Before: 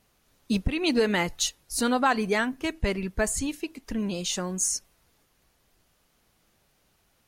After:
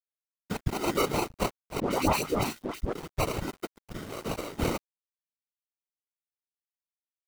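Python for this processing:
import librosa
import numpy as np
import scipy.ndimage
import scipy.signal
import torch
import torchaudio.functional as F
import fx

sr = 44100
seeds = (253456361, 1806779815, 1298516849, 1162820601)

y = fx.spec_quant(x, sr, step_db=15)
y = fx.peak_eq(y, sr, hz=160.0, db=-14.0, octaves=1.0)
y = fx.sample_hold(y, sr, seeds[0], rate_hz=1700.0, jitter_pct=0)
y = fx.whisperise(y, sr, seeds[1])
y = fx.dispersion(y, sr, late='highs', ms=107.0, hz=1300.0, at=(1.8, 2.93))
y = np.sign(y) * np.maximum(np.abs(y) - 10.0 ** (-43.0 / 20.0), 0.0)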